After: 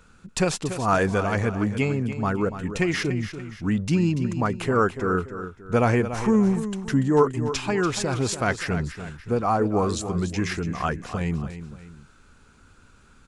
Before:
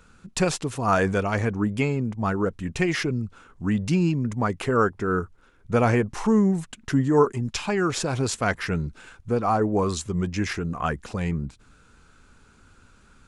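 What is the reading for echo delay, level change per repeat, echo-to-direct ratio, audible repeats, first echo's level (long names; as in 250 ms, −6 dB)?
288 ms, −7.5 dB, −10.5 dB, 2, −11.0 dB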